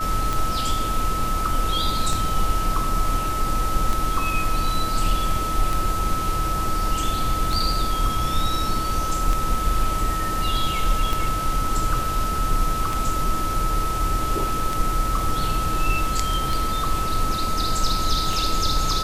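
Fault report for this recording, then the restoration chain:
tick 33 1/3 rpm
tone 1300 Hz -25 dBFS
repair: de-click; notch 1300 Hz, Q 30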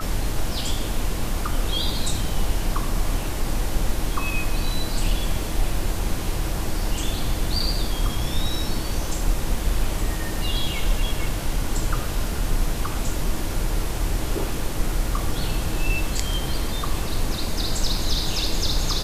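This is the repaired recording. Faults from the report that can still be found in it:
none

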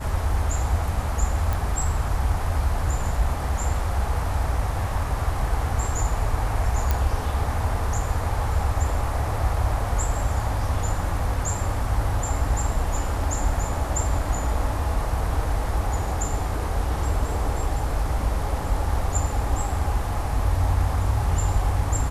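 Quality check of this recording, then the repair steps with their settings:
1.53 pop
6.91 pop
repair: de-click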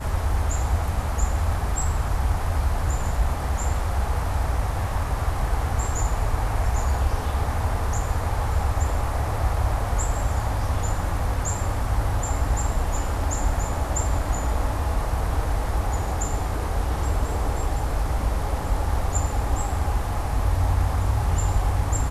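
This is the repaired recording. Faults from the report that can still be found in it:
none

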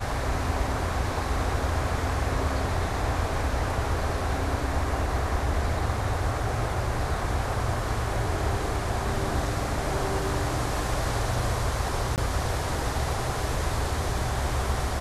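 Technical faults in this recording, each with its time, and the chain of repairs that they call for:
12.16–12.18 gap 18 ms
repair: interpolate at 12.16, 18 ms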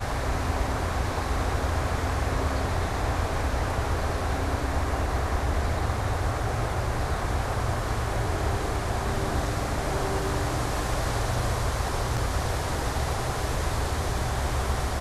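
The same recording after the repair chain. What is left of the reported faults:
none

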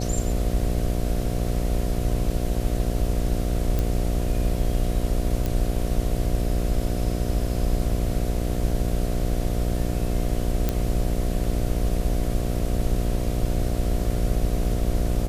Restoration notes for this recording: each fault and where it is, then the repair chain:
buzz 60 Hz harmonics 12 -27 dBFS
3.79 pop
5.46 pop
10.69 pop -9 dBFS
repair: de-click; de-hum 60 Hz, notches 12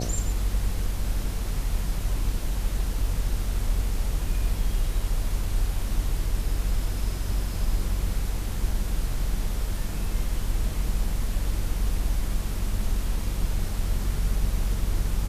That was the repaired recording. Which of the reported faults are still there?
none

